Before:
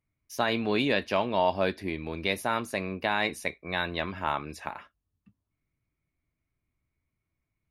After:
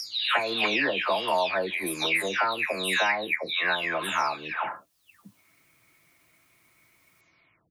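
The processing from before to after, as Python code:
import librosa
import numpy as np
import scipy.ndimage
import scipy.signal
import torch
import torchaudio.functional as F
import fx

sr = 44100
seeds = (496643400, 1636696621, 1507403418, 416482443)

y = fx.spec_delay(x, sr, highs='early', ms=502)
y = fx.highpass(y, sr, hz=1000.0, slope=6)
y = fx.band_squash(y, sr, depth_pct=70)
y = y * 10.0 ** (7.5 / 20.0)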